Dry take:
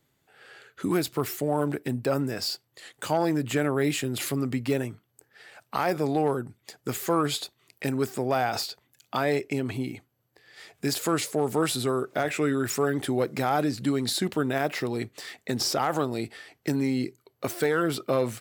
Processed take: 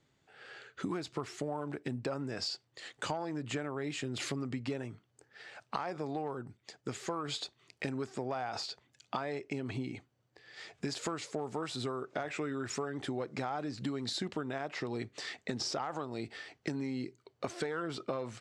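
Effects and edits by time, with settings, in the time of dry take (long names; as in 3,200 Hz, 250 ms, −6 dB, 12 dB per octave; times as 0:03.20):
0:06.57–0:07.28: clip gain −4 dB
whole clip: low-pass filter 7,200 Hz 24 dB per octave; dynamic equaliser 1,000 Hz, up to +5 dB, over −38 dBFS, Q 1.4; downward compressor 10 to 1, threshold −32 dBFS; level −1 dB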